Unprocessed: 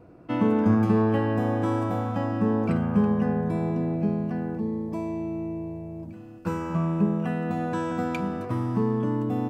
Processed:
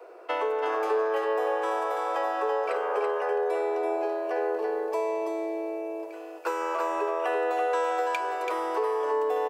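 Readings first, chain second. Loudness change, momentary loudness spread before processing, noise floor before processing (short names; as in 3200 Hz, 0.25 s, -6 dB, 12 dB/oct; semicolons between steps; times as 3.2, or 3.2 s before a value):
-2.0 dB, 10 LU, -43 dBFS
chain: steep high-pass 380 Hz 72 dB/oct; compressor 5:1, threshold -35 dBFS, peak gain reduction 11 dB; echo 0.333 s -5 dB; gain +9 dB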